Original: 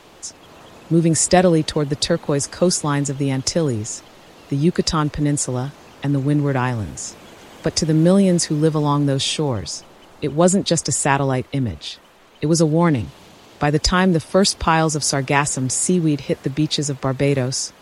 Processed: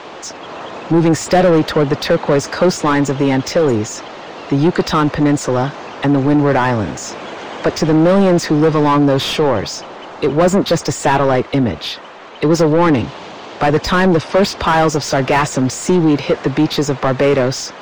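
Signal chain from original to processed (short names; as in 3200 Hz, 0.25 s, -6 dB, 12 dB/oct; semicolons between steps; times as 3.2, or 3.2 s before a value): LPF 6900 Hz 24 dB/oct; high shelf 5400 Hz +3.5 dB; overdrive pedal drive 28 dB, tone 1100 Hz, clips at -1 dBFS; gain -1.5 dB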